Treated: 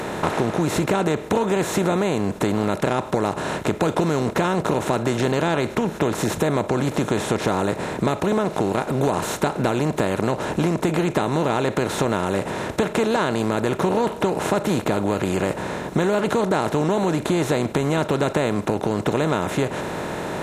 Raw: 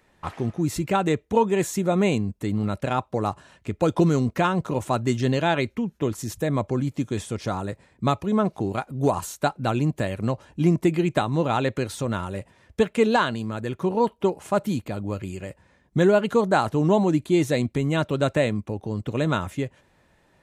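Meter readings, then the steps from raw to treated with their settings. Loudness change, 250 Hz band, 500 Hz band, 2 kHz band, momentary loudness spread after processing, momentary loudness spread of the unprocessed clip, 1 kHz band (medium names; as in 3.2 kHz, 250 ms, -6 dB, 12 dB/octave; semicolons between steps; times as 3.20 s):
+2.0 dB, +2.0 dB, +3.0 dB, +3.5 dB, 3 LU, 10 LU, +3.0 dB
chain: spectral levelling over time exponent 0.4; compression, threshold -18 dBFS, peak gain reduction 8.5 dB; in parallel at -6.5 dB: saturation -12 dBFS, distortion -21 dB; on the sum: trim -2 dB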